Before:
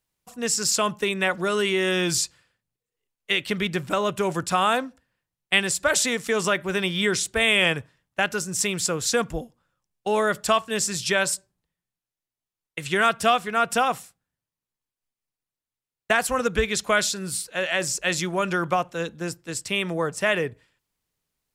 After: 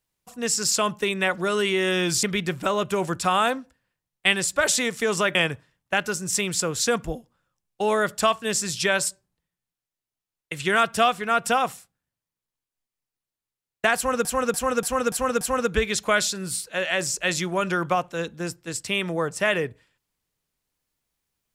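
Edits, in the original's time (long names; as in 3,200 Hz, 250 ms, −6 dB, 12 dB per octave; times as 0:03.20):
0:02.23–0:03.50: remove
0:06.62–0:07.61: remove
0:16.22–0:16.51: repeat, 6 plays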